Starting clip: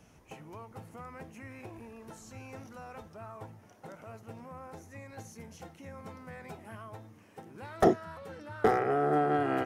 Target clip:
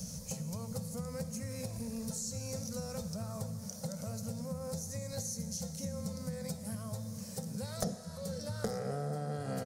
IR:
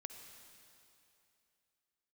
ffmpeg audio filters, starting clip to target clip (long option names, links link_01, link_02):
-filter_complex "[0:a]firequalizer=gain_entry='entry(120,0);entry(190,8);entry(340,-29);entry(500,-2);entry(750,-17);entry(1700,-17);entry(2800,-17);entry(4400,7);entry(9300,14)':delay=0.05:min_phase=1,acompressor=threshold=-52dB:ratio=5,asplit=2[link_01][link_02];[1:a]atrim=start_sample=2205,lowpass=8100,lowshelf=frequency=230:gain=-7.5[link_03];[link_02][link_03]afir=irnorm=-1:irlink=0,volume=6.5dB[link_04];[link_01][link_04]amix=inputs=2:normalize=0,volume=11dB"